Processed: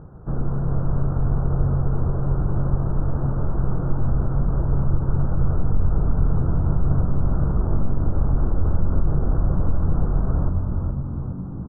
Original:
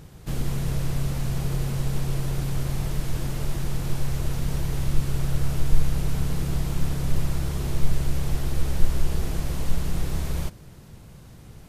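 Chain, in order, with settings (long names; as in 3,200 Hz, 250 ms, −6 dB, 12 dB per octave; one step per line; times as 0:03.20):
elliptic low-pass filter 1,400 Hz, stop band 40 dB
brickwall limiter −16.5 dBFS, peak gain reduction 11 dB
on a send: echo with shifted repeats 417 ms, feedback 60%, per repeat −48 Hz, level −5 dB
on the sum: level +4.5 dB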